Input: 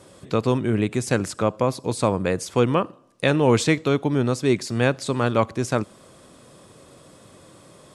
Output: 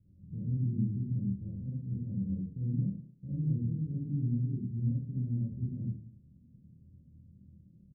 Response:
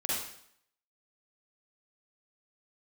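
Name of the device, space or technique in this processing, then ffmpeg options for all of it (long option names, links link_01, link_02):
club heard from the street: -filter_complex "[0:a]alimiter=limit=-13dB:level=0:latency=1:release=28,lowpass=frequency=170:width=0.5412,lowpass=frequency=170:width=1.3066[link_01];[1:a]atrim=start_sample=2205[link_02];[link_01][link_02]afir=irnorm=-1:irlink=0,asplit=2[link_03][link_04];[link_04]adelay=25,volume=-6.5dB[link_05];[link_03][link_05]amix=inputs=2:normalize=0,volume=-6dB"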